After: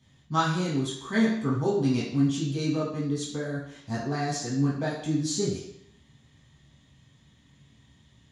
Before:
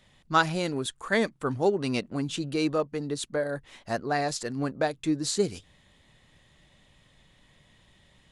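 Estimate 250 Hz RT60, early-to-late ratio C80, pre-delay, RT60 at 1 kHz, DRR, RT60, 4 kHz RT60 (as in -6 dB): 0.70 s, 6.0 dB, 3 ms, 0.70 s, -8.0 dB, 0.70 s, 0.70 s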